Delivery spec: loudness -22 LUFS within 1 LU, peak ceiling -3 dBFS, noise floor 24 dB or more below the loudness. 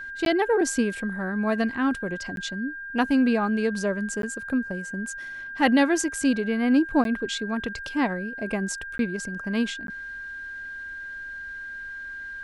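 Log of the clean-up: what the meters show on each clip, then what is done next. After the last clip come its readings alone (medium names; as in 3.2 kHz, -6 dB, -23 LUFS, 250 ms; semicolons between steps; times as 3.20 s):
dropouts 6; longest dropout 12 ms; steady tone 1.6 kHz; tone level -34 dBFS; loudness -26.5 LUFS; peak level -7.0 dBFS; loudness target -22.0 LUFS
-> interpolate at 0.25/2.36/4.22/7.04/8.98/9.87 s, 12 ms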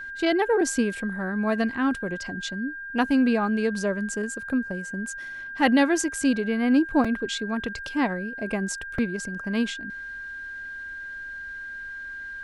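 dropouts 0; steady tone 1.6 kHz; tone level -34 dBFS
-> band-stop 1.6 kHz, Q 30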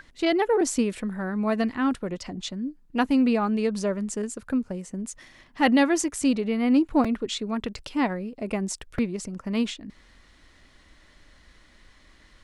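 steady tone not found; loudness -26.0 LUFS; peak level -8.0 dBFS; loudness target -22.0 LUFS
-> trim +4 dB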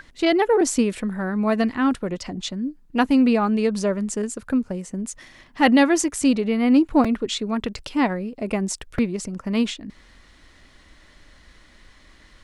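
loudness -22.0 LUFS; peak level -4.0 dBFS; noise floor -53 dBFS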